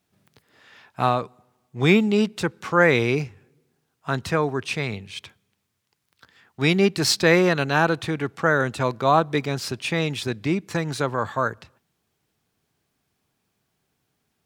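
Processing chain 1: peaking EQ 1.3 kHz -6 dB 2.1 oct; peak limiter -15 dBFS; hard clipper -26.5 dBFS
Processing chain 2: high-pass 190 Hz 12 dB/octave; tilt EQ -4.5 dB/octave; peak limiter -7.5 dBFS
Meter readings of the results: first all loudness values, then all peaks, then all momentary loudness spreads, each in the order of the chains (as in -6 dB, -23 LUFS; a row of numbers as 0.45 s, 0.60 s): -31.5 LUFS, -20.0 LUFS; -26.5 dBFS, -7.5 dBFS; 9 LU, 9 LU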